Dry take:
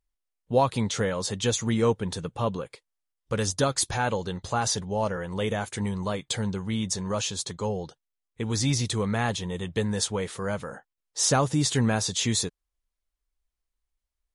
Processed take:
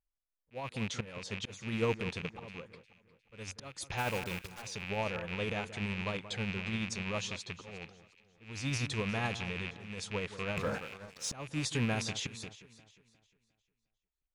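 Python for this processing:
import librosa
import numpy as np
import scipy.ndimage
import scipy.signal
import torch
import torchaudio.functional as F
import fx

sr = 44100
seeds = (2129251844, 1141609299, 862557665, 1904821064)

p1 = fx.rattle_buzz(x, sr, strikes_db=-34.0, level_db=-18.0)
p2 = fx.env_lowpass(p1, sr, base_hz=2300.0, full_db=-19.5)
p3 = fx.dynamic_eq(p2, sr, hz=8400.0, q=1.1, threshold_db=-44.0, ratio=4.0, max_db=-4)
p4 = fx.auto_swell(p3, sr, attack_ms=383.0)
p5 = fx.quant_dither(p4, sr, seeds[0], bits=6, dither='none', at=(3.97, 4.61), fade=0.02)
p6 = p5 * (1.0 - 0.32 / 2.0 + 0.32 / 2.0 * np.cos(2.0 * np.pi * 12.0 * (np.arange(len(p5)) / sr)))
p7 = p6 + fx.echo_alternate(p6, sr, ms=178, hz=1800.0, feedback_pct=58, wet_db=-12.5, dry=0)
p8 = fx.leveller(p7, sr, passes=3, at=(10.57, 11.33))
y = F.gain(torch.from_numpy(p8), -7.0).numpy()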